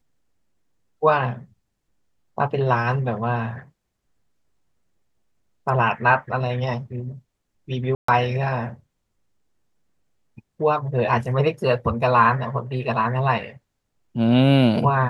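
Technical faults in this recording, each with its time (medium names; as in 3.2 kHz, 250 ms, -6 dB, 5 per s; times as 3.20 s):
7.95–8.08 s: dropout 134 ms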